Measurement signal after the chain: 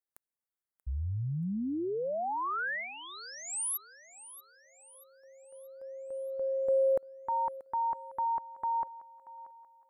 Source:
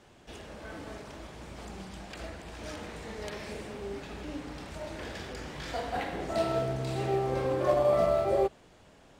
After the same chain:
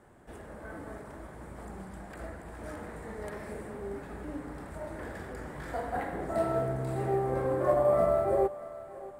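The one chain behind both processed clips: band shelf 4000 Hz -14.5 dB; thinning echo 0.633 s, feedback 48%, high-pass 370 Hz, level -16 dB

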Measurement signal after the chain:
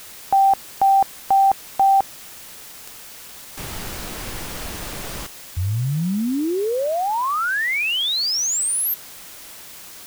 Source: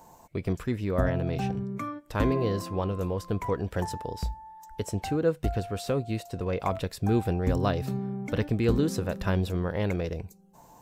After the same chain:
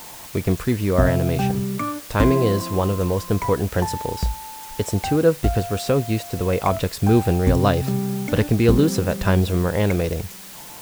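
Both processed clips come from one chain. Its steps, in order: requantised 8-bit, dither triangular; gain +8.5 dB

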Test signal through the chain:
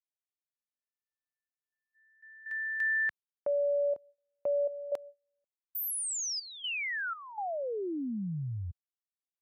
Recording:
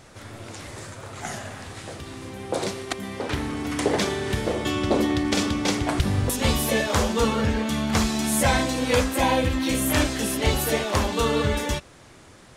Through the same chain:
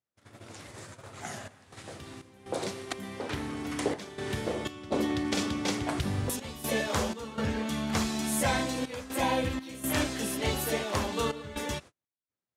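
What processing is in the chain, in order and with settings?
gate -38 dBFS, range -40 dB; HPF 81 Hz; step gate "xxxxxx.xx." 61 bpm -12 dB; gain -6.5 dB

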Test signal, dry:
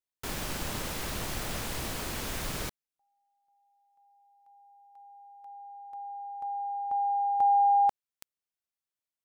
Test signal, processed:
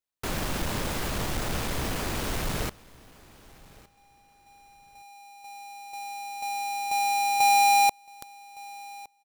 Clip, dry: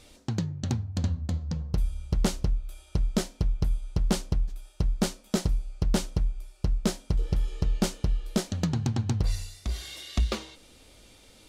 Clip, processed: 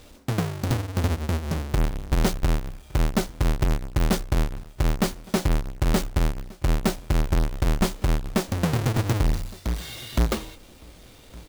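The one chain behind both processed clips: half-waves squared off; feedback echo 1.163 s, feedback 22%, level -22.5 dB

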